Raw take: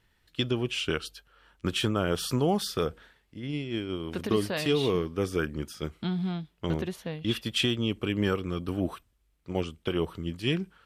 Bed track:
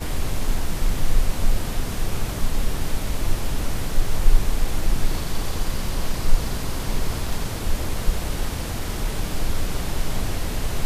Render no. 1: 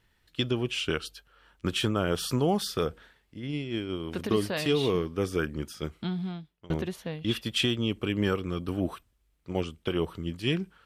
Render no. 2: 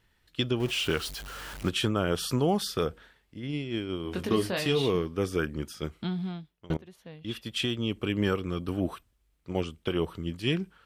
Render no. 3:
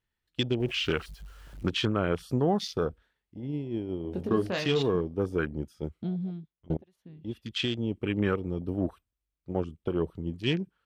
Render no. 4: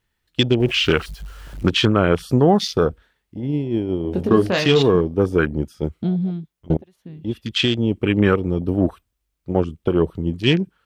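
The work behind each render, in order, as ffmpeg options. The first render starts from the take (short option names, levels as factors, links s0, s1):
-filter_complex "[0:a]asplit=2[s0][s1];[s0]atrim=end=6.7,asetpts=PTS-STARTPTS,afade=t=out:st=5.74:d=0.96:c=qsin:silence=0.0668344[s2];[s1]atrim=start=6.7,asetpts=PTS-STARTPTS,afade=t=in:d=0.004:c=hsin:silence=0.0668344[s3];[s2][s3]concat=n=2:v=0:a=1"
-filter_complex "[0:a]asettb=1/sr,asplit=3[s0][s1][s2];[s0]atrim=end=0.604[s3];[s1]atrim=start=0.6:end=1.69,asetpts=PTS-STARTPTS,afade=t=in:d=0.004:c=qsin,afade=t=out:st=1.086:d=0.004:c=qsin,aeval=exprs='val(0)+0.5*0.0168*sgn(val(0))':c=same[s4];[s2]atrim=start=1.686[s5];[s3][s4]acrossfade=d=0.004:c1=hsin:c2=qsin[s6];[s6][s5]acrossfade=d=0.004:c1=qsin:c2=hsin,asettb=1/sr,asplit=3[s7][s8][s9];[s7]atrim=end=4.034[s10];[s8]atrim=start=4.03:end=4.82,asetpts=PTS-STARTPTS,afade=t=in:d=0.004:c=qsin,afade=t=out:st=0.786:d=0.004:c=qsin,asplit=2[s11][s12];[s12]adelay=22,volume=0.447[s13];[s11][s13]amix=inputs=2:normalize=0,atrim=end_sample=34839[s14];[s9]atrim=start=4.816[s15];[s10][s14]acrossfade=d=0.004:c1=hsin:c2=qsin[s16];[s16][s15]acrossfade=d=0.004:c1=qsin:c2=hsin,asplit=2[s17][s18];[s17]atrim=end=6.77,asetpts=PTS-STARTPTS,afade=t=out:st=6.766:d=0.004:c=hsin:silence=0.0749894[s19];[s18]atrim=start=6.77,asetpts=PTS-STARTPTS,afade=t=in:d=1.33:silence=0.0749894[s20];[s19][s20]concat=n=2:v=0:a=1"
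-af "afwtdn=0.0158"
-af "volume=3.55"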